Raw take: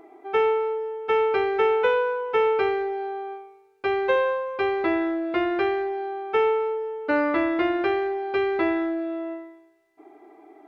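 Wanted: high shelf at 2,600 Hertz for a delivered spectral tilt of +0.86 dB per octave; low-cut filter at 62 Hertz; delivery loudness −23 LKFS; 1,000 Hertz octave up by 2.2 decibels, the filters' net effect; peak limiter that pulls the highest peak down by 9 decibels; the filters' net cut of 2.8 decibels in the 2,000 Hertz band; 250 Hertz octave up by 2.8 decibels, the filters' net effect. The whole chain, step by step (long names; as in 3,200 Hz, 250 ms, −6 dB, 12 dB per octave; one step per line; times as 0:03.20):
high-pass filter 62 Hz
parametric band 250 Hz +4.5 dB
parametric band 1,000 Hz +4 dB
parametric band 2,000 Hz −3.5 dB
high-shelf EQ 2,600 Hz −4.5 dB
level +3 dB
brickwall limiter −15.5 dBFS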